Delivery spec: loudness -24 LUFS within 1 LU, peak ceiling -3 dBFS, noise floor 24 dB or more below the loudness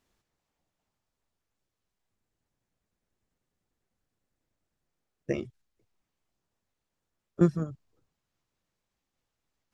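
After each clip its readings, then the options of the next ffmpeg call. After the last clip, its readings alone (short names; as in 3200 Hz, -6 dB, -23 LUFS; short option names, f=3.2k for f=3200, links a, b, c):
loudness -30.0 LUFS; peak -10.5 dBFS; loudness target -24.0 LUFS
-> -af "volume=6dB"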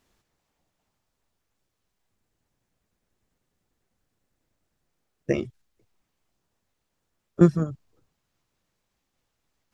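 loudness -24.0 LUFS; peak -4.5 dBFS; noise floor -79 dBFS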